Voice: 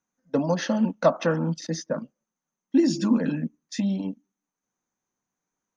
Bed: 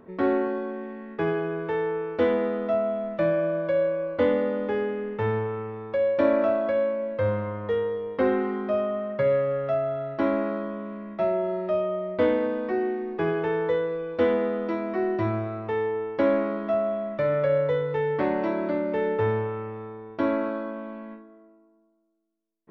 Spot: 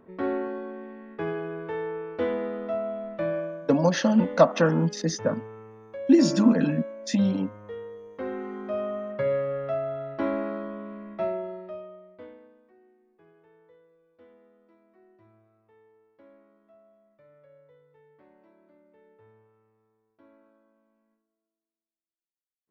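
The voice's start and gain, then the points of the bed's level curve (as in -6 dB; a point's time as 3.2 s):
3.35 s, +2.5 dB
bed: 3.37 s -5 dB
3.64 s -12.5 dB
8.11 s -12.5 dB
8.87 s -3.5 dB
11.24 s -3.5 dB
12.74 s -33.5 dB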